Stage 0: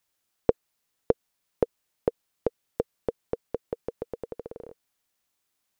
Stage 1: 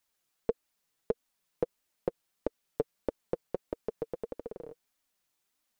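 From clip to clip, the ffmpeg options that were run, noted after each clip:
ffmpeg -i in.wav -af "alimiter=limit=-12.5dB:level=0:latency=1:release=79,flanger=delay=3:depth=3.9:regen=22:speed=1.6:shape=triangular,volume=2dB" out.wav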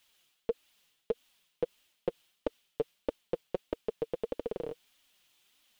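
ffmpeg -i in.wav -af "equalizer=frequency=3100:width=1.6:gain=12,areverse,acompressor=threshold=-38dB:ratio=4,areverse,volume=7.5dB" out.wav

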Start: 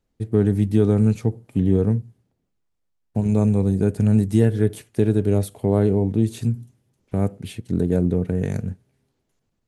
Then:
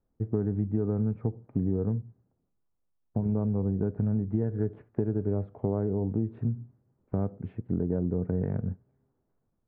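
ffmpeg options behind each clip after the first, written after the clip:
ffmpeg -i in.wav -af "acompressor=threshold=-21dB:ratio=6,lowpass=frequency=1400:width=0.5412,lowpass=frequency=1400:width=1.3066,volume=-3dB" out.wav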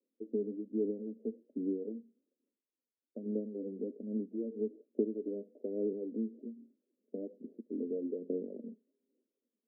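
ffmpeg -i in.wav -af "aphaser=in_gain=1:out_gain=1:delay=4.7:decay=0.48:speed=1.2:type=sinusoidal,asuperpass=centerf=360:order=12:qfactor=1,volume=-6dB" out.wav

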